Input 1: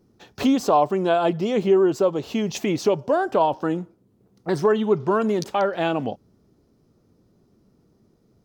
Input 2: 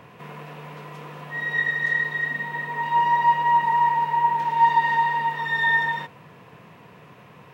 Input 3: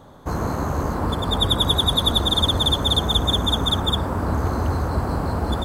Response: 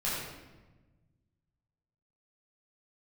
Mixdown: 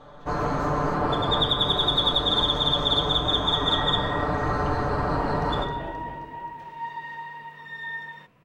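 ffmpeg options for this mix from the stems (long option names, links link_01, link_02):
-filter_complex "[0:a]tiltshelf=frequency=970:gain=3.5,acompressor=threshold=-37dB:ratio=1.5,volume=-15dB,asplit=3[link_01][link_02][link_03];[link_02]volume=-8dB[link_04];[link_03]volume=-5dB[link_05];[1:a]bandreject=frequency=850:width=5.1,adelay=2200,volume=-13.5dB[link_06];[2:a]lowpass=3800,equalizer=frequency=130:width=0.47:gain=-8.5,aecho=1:1:6.8:0.83,volume=-2.5dB,asplit=2[link_07][link_08];[link_08]volume=-9dB[link_09];[3:a]atrim=start_sample=2205[link_10];[link_04][link_09]amix=inputs=2:normalize=0[link_11];[link_11][link_10]afir=irnorm=-1:irlink=0[link_12];[link_05]aecho=0:1:264|528|792|1056|1320|1584|1848|2112|2376:1|0.59|0.348|0.205|0.121|0.0715|0.0422|0.0249|0.0147[link_13];[link_01][link_06][link_07][link_12][link_13]amix=inputs=5:normalize=0,alimiter=limit=-11dB:level=0:latency=1:release=355"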